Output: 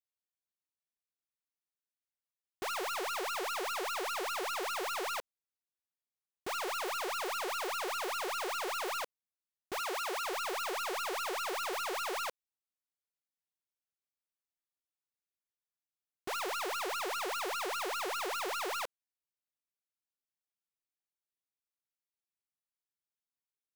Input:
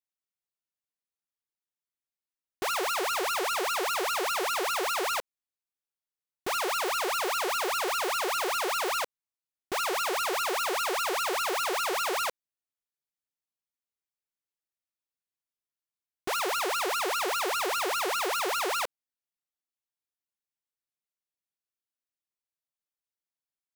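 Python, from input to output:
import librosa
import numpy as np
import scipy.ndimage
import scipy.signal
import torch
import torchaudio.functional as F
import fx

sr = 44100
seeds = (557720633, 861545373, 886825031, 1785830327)

y = fx.tracing_dist(x, sr, depth_ms=0.086)
y = fx.highpass(y, sr, hz=150.0, slope=12, at=(9.78, 10.26))
y = y * librosa.db_to_amplitude(-7.0)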